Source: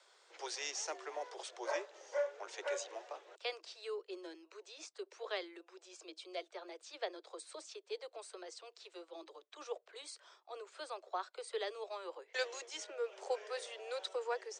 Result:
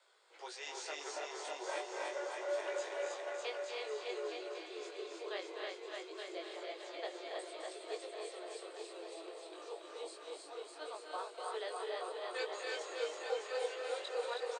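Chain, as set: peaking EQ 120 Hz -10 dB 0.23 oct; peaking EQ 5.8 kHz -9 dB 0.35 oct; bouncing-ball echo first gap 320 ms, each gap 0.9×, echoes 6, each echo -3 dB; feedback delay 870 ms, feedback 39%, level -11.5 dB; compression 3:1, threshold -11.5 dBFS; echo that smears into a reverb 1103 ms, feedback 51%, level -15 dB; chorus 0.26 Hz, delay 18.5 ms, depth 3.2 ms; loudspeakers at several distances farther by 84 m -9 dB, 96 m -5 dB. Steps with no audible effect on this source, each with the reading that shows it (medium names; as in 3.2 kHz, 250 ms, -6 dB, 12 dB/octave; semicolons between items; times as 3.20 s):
peaking EQ 120 Hz: input has nothing below 290 Hz; compression, threshold -11.5 dBFS: peak at its input -24.0 dBFS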